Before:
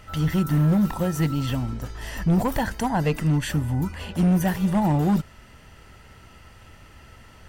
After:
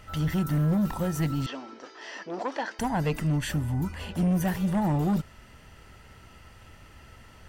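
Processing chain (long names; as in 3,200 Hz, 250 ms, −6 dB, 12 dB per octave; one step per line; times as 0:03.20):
soft clipping −16.5 dBFS, distortion −19 dB
0:01.46–0:02.79: elliptic band-pass filter 320–5,600 Hz, stop band 50 dB
level −2.5 dB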